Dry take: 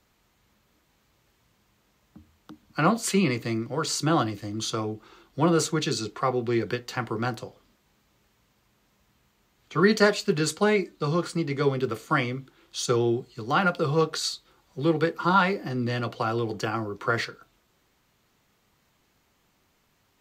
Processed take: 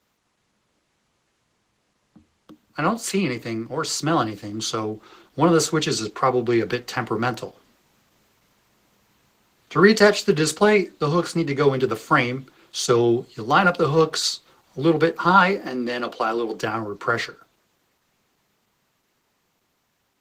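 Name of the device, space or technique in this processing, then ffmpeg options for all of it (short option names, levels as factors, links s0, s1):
video call: -filter_complex "[0:a]asplit=3[s0][s1][s2];[s0]afade=t=out:st=15.61:d=0.02[s3];[s1]highpass=f=220:w=0.5412,highpass=f=220:w=1.3066,afade=t=in:st=15.61:d=0.02,afade=t=out:st=16.61:d=0.02[s4];[s2]afade=t=in:st=16.61:d=0.02[s5];[s3][s4][s5]amix=inputs=3:normalize=0,highpass=f=170:p=1,dynaudnorm=f=790:g=11:m=5.01" -ar 48000 -c:a libopus -b:a 16k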